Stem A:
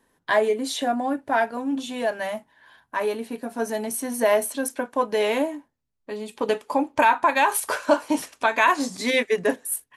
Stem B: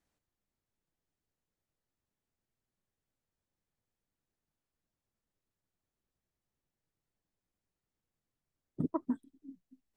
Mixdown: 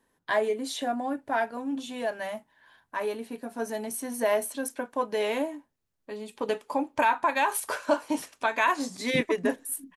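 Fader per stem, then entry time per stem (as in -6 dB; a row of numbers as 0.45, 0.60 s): -5.5, +2.5 dB; 0.00, 0.35 s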